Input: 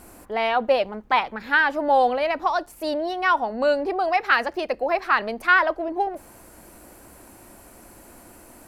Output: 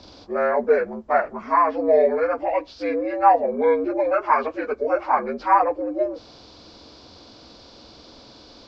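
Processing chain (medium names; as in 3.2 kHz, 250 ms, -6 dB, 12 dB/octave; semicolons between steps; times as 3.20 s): frequency axis rescaled in octaves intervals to 77%; 3.13–3.61 s: small resonant body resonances 480/800 Hz, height 9 dB; trim +2.5 dB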